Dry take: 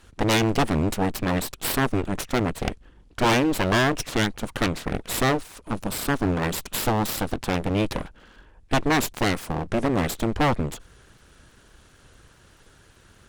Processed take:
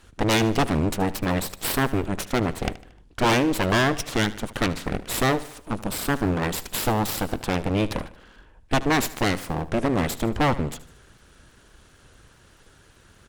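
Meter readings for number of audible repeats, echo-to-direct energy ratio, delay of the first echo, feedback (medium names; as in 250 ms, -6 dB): 3, -16.0 dB, 76 ms, 47%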